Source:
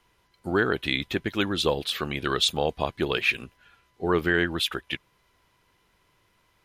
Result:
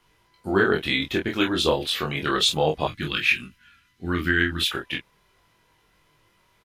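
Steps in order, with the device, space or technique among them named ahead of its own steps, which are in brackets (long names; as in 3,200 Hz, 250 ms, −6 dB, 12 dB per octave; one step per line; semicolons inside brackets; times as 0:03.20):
double-tracked vocal (double-tracking delay 26 ms −5.5 dB; chorus effect 0.34 Hz, delay 19.5 ms, depth 3.4 ms)
0:02.87–0:04.62: flat-topped bell 620 Hz −16 dB
level +5 dB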